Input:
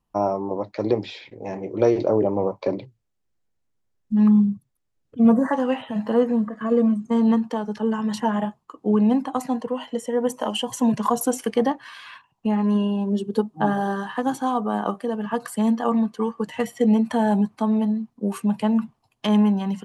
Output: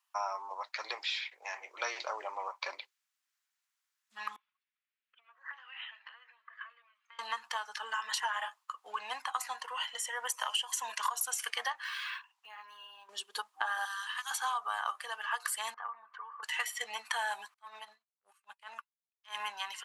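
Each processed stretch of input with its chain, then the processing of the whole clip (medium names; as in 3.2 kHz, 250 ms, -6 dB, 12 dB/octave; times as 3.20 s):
4.36–7.19 s: compression 8:1, threshold -31 dBFS + band-pass filter 2.5 kHz, Q 1.5 + distance through air 200 m
11.84–13.09 s: compression 2.5:1, threshold -39 dBFS + decimation joined by straight lines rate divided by 2×
13.85–14.31 s: high-pass 1.2 kHz 24 dB/octave + peaking EQ 1.6 kHz -8 dB 0.91 oct
15.74–16.43 s: compression, threshold -35 dBFS + resonant low-pass 1.3 kHz, resonance Q 1.6
17.54–19.40 s: transient shaper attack -12 dB, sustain -6 dB + upward expansion 2.5:1, over -40 dBFS
whole clip: high-pass 1.2 kHz 24 dB/octave; compression, threshold -35 dBFS; trim +5 dB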